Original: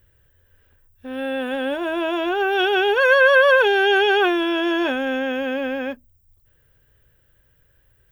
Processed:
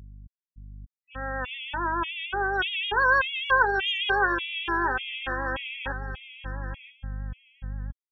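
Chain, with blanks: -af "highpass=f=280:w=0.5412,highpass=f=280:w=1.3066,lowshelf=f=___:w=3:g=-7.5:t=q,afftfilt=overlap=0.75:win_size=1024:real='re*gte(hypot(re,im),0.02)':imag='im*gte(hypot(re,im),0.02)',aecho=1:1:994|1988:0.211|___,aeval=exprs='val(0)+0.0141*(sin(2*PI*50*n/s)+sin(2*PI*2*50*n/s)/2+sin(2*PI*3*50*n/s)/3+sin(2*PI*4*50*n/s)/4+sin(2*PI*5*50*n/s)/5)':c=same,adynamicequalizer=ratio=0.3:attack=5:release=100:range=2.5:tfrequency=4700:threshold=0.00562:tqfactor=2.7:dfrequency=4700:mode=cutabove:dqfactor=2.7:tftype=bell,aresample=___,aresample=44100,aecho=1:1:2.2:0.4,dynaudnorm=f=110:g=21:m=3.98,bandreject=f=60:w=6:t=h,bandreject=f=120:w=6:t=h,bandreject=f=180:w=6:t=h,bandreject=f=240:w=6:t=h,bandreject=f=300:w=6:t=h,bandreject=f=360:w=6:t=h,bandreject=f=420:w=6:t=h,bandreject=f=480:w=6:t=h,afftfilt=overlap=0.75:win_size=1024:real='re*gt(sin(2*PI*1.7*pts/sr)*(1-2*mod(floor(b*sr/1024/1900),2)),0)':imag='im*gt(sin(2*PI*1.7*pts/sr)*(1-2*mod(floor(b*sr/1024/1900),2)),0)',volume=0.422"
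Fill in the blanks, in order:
770, 0.0444, 16000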